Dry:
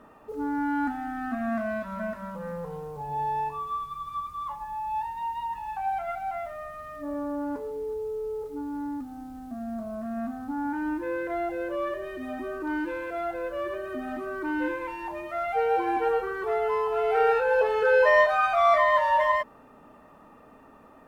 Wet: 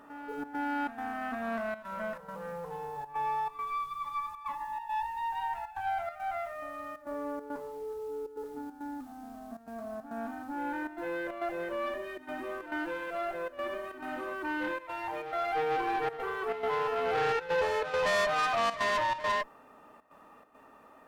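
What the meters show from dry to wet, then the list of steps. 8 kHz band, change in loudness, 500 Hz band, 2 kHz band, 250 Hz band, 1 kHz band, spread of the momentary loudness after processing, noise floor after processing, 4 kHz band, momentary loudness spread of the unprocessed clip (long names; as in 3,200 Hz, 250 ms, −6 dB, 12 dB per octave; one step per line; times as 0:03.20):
can't be measured, −6.0 dB, −7.5 dB, −5.0 dB, −8.0 dB, −5.0 dB, 12 LU, −56 dBFS, +2.5 dB, 14 LU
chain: low-shelf EQ 330 Hz −11.5 dB
tube saturation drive 27 dB, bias 0.5
gate pattern "xxxx.xxx.xxx" 138 BPM −12 dB
on a send: backwards echo 446 ms −11 dB
on the sum: level +1.5 dB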